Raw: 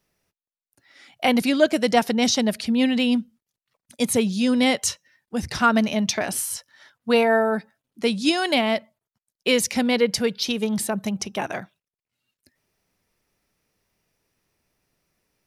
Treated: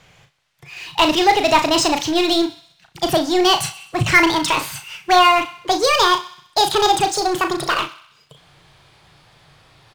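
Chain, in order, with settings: speed glide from 122% -> 189%; LPF 3100 Hz 12 dB/oct; tilt +2.5 dB/oct; power-law curve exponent 0.7; resonant low shelf 180 Hz +8 dB, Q 3; doubler 36 ms -7 dB; on a send: thinning echo 64 ms, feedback 60%, high-pass 560 Hz, level -16 dB; on the sum: gain +2.5 dB

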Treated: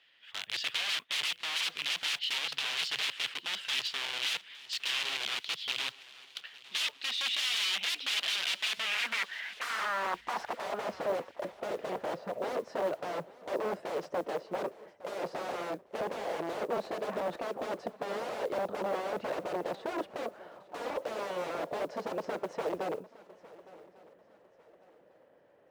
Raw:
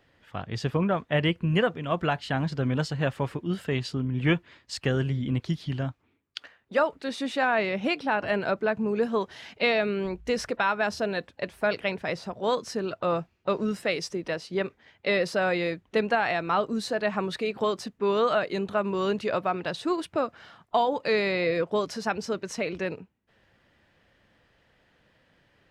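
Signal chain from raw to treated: wrapped overs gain 27.5 dB; band-pass sweep 3100 Hz -> 550 Hz, 8.7–10.99; modulation noise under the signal 31 dB; on a send: swung echo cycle 1.148 s, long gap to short 3:1, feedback 33%, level -20 dB; on the sum: gain +8.5 dB

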